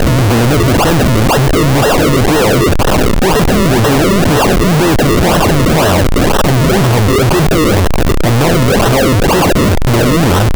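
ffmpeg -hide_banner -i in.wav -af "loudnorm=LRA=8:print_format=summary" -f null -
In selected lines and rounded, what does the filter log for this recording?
Input Integrated:    -10.0 LUFS
Input True Peak:      -6.5 dBTP
Input LRA:             0.5 LU
Input Threshold:     -20.0 LUFS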